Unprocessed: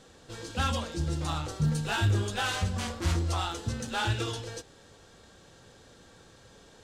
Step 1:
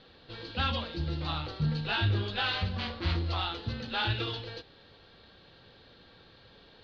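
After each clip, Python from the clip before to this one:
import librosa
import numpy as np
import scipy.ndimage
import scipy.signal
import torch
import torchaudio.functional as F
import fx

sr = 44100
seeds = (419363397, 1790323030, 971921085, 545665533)

y = scipy.signal.sosfilt(scipy.signal.cheby1(5, 1.0, 4400.0, 'lowpass', fs=sr, output='sos'), x)
y = fx.high_shelf(y, sr, hz=2500.0, db=9.0)
y = F.gain(torch.from_numpy(y), -2.5).numpy()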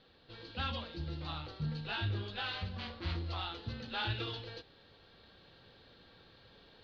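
y = fx.rider(x, sr, range_db=10, speed_s=2.0)
y = F.gain(torch.from_numpy(y), -7.5).numpy()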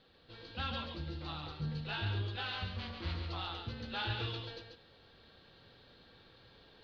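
y = x + 10.0 ** (-5.5 / 20.0) * np.pad(x, (int(139 * sr / 1000.0), 0))[:len(x)]
y = F.gain(torch.from_numpy(y), -1.5).numpy()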